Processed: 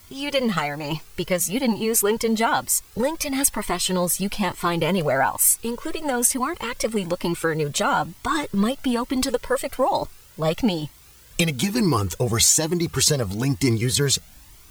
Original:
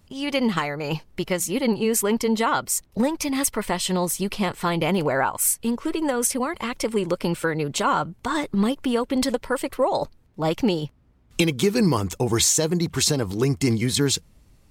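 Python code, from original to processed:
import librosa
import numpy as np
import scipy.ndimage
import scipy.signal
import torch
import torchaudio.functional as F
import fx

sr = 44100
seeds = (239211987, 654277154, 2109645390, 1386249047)

y = fx.high_shelf(x, sr, hz=9200.0, db=5.0)
y = fx.dmg_noise_colour(y, sr, seeds[0], colour='white', level_db=-52.0)
y = fx.comb_cascade(y, sr, direction='rising', hz=1.1)
y = F.gain(torch.from_numpy(y), 5.5).numpy()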